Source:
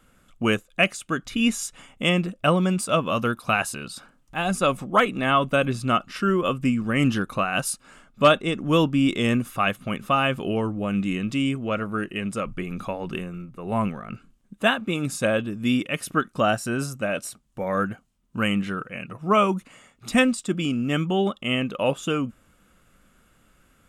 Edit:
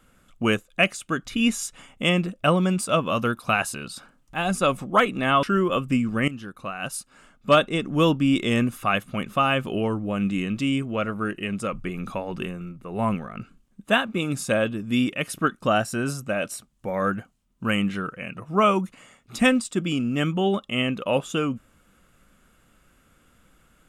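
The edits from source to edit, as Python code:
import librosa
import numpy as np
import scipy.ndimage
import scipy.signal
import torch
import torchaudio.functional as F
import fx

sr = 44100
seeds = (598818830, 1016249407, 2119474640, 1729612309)

y = fx.edit(x, sr, fx.cut(start_s=5.43, length_s=0.73),
    fx.fade_in_from(start_s=7.01, length_s=1.43, floor_db=-17.5), tone=tone)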